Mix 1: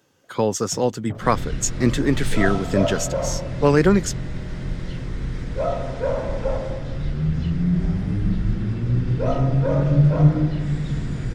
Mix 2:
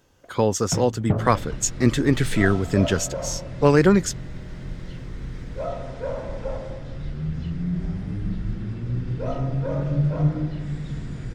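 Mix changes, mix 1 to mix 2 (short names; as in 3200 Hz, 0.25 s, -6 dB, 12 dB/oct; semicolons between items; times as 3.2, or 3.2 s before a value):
speech: remove HPF 110 Hz 24 dB/oct; first sound +12.0 dB; second sound -6.0 dB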